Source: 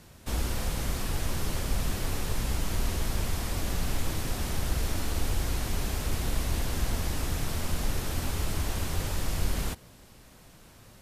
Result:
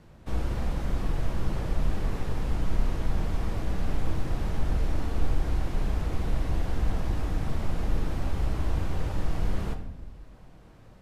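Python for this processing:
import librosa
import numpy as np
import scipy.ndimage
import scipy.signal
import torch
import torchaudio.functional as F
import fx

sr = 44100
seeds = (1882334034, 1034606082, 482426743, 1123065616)

y = fx.lowpass(x, sr, hz=1200.0, slope=6)
y = fx.room_shoebox(y, sr, seeds[0], volume_m3=320.0, walls='mixed', distance_m=0.61)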